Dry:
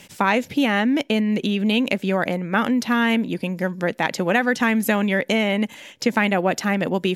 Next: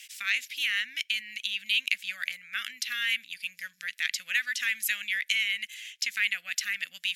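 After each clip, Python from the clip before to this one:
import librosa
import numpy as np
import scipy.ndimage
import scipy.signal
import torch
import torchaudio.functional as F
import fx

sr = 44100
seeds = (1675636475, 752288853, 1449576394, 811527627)

y = scipy.signal.sosfilt(scipy.signal.cheby2(4, 40, 1000.0, 'highpass', fs=sr, output='sos'), x)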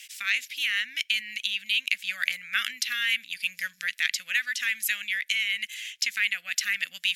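y = fx.rider(x, sr, range_db=5, speed_s=0.5)
y = y * librosa.db_to_amplitude(2.5)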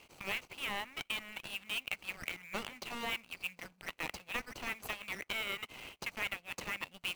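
y = scipy.ndimage.median_filter(x, 25, mode='constant')
y = 10.0 ** (-21.5 / 20.0) * np.tanh(y / 10.0 ** (-21.5 / 20.0))
y = y * librosa.db_to_amplitude(-1.0)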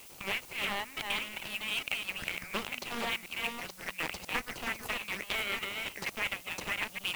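y = fx.reverse_delay(x, sr, ms=466, wet_db=-4.0)
y = fx.dmg_noise_colour(y, sr, seeds[0], colour='blue', level_db=-54.0)
y = fx.doppler_dist(y, sr, depth_ms=0.31)
y = y * librosa.db_to_amplitude(3.5)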